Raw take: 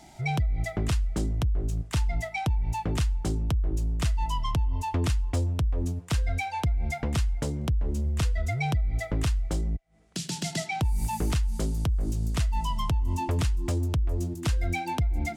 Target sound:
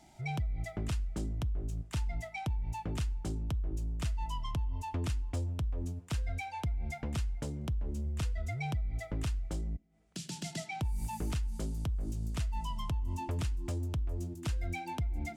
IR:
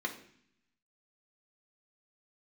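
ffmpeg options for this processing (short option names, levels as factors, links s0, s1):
-filter_complex "[0:a]asplit=2[s0][s1];[s1]highshelf=f=6400:g=8[s2];[1:a]atrim=start_sample=2205[s3];[s2][s3]afir=irnorm=-1:irlink=0,volume=0.0944[s4];[s0][s4]amix=inputs=2:normalize=0,volume=0.376"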